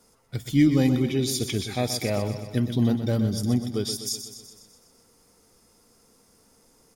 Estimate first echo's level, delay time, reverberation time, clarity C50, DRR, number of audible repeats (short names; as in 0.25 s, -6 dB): -10.0 dB, 0.125 s, none, none, none, 6